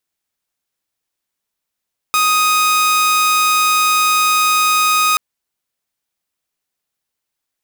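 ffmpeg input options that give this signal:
-f lavfi -i "aevalsrc='0.355*(2*mod(1250*t,1)-1)':d=3.03:s=44100"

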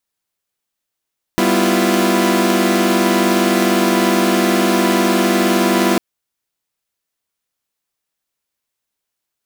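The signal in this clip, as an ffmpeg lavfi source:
-f lavfi -i "aevalsrc='0.168*((2*mod(196*t,1)-1)+(2*mod(246.94*t,1)-1)+(2*mod(329.63*t,1)-1)+(2*mod(349.23*t,1)-1))':d=4.6:s=44100"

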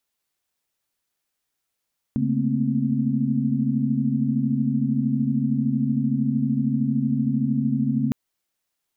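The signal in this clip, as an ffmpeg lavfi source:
-f lavfi -i "aevalsrc='0.0562*(sin(2*PI*138.59*t)+sin(2*PI*220*t)+sin(2*PI*233.08*t)+sin(2*PI*261.63*t))':d=5.96:s=44100"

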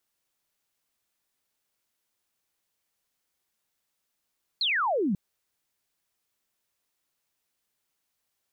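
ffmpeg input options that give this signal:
-f lavfi -i "aevalsrc='0.0708*clip(t/0.002,0,1)*clip((0.54-t)/0.002,0,1)*sin(2*PI*4400*0.54/log(170/4400)*(exp(log(170/4400)*t/0.54)-1))':d=0.54:s=44100"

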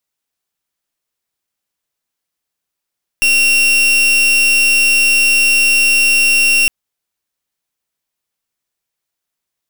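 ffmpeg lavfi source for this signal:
-f lavfi -i "aevalsrc='0.282*(2*lt(mod(2740*t,1),0.39)-1)':d=3.46:s=44100"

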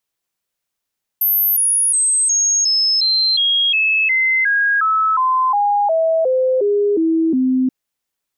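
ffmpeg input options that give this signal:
-f lavfi -i "aevalsrc='0.237*clip(min(mod(t,0.36),0.36-mod(t,0.36))/0.005,0,1)*sin(2*PI*13100*pow(2,-floor(t/0.36)/3)*mod(t,0.36))':d=6.48:s=44100"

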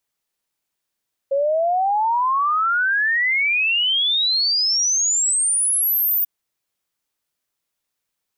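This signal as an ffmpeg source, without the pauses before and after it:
-f lavfi -i "aevalsrc='0.158*clip(min(t,4.94-t)/0.01,0,1)*sin(2*PI*540*4.94/log(15000/540)*(exp(log(15000/540)*t/4.94)-1))':d=4.94:s=44100"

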